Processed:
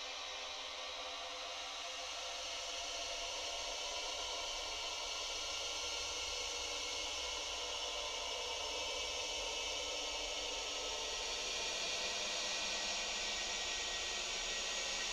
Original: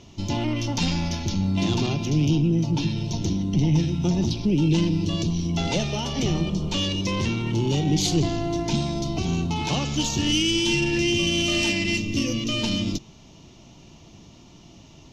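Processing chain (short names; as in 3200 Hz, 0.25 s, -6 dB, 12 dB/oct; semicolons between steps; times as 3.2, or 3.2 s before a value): spectral gate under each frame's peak -25 dB weak; grains 0.253 s, grains 29/s, spray 0.1 s, pitch spread up and down by 0 st; Paulstretch 39×, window 0.10 s, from 7.4; gain +5.5 dB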